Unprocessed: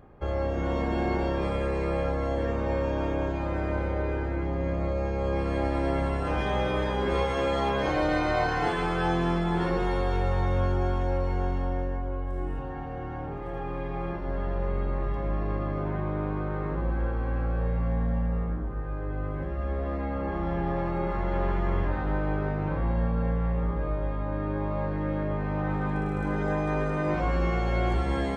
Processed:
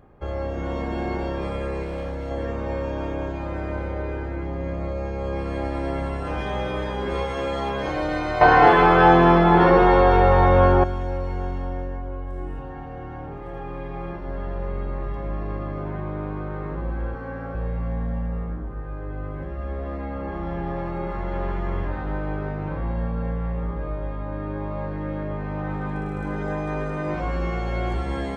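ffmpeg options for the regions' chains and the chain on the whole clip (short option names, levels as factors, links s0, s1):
-filter_complex "[0:a]asettb=1/sr,asplit=3[s0][s1][s2];[s0]atrim=end=1.834[s3];[s1]atrim=start=1.83:end=2.31,asetpts=PTS-STARTPTS,afade=t=in:d=0.004:c=qsin,afade=t=out:st=0.476:d=0.004:c=qsin,equalizer=f=1100:t=o:w=0.56:g=-13.5,asoftclip=type=hard:threshold=0.0531[s4];[s2]atrim=start=2.306[s5];[s3][s4]acrossfade=d=0.004:c1=hsin:c2=qsin[s6];[s6][s5]acrossfade=d=0.004:c1=qsin:c2=hsin,asettb=1/sr,asplit=3[s7][s8][s9];[s7]atrim=end=8.414[s10];[s8]atrim=start=8.41:end=10.84,asetpts=PTS-STARTPTS,afade=t=in:d=0.004:c=qsin,afade=t=out:st=2.426:d=0.004:c=qsin,equalizer=f=820:t=o:w=2.9:g=9.5,acontrast=68,lowpass=4500[s11];[s9]atrim=start=10.836[s12];[s10][s11]acrossfade=d=0.004:c1=hsin:c2=qsin[s13];[s13][s12]acrossfade=d=0.004:c1=qsin:c2=hsin,asettb=1/sr,asplit=3[s14][s15][s16];[s14]atrim=end=17.144[s17];[s15]atrim=start=17.14:end=17.55,asetpts=PTS-STARTPTS,afade=t=in:d=0.004:c=qsin,afade=t=out:st=0.406:d=0.004:c=qsin,equalizer=f=80:t=o:w=1.8:g=-8,aecho=1:1:7.2:0.77,atrim=end_sample=18081[s18];[s16]atrim=start=17.546[s19];[s17][s18]acrossfade=d=0.004:c1=hsin:c2=qsin[s20];[s20][s19]acrossfade=d=0.004:c1=qsin:c2=hsin"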